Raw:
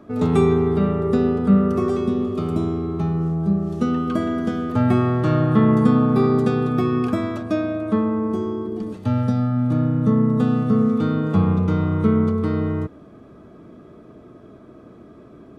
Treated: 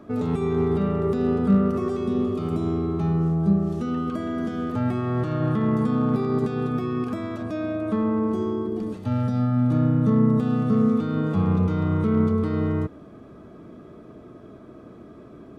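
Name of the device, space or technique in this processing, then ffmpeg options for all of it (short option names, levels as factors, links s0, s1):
de-esser from a sidechain: -filter_complex "[0:a]asplit=2[s0][s1];[s1]highpass=4200,apad=whole_len=687394[s2];[s0][s2]sidechaincompress=threshold=0.00251:ratio=4:attack=0.98:release=57"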